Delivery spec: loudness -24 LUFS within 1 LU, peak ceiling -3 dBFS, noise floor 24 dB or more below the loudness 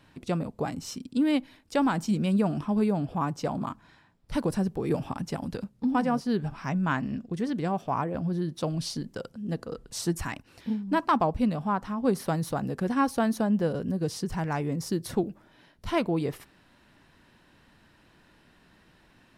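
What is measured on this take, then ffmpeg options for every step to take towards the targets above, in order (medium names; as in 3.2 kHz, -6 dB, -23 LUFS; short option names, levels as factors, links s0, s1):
loudness -29.0 LUFS; peak level -11.5 dBFS; loudness target -24.0 LUFS
-> -af "volume=1.78"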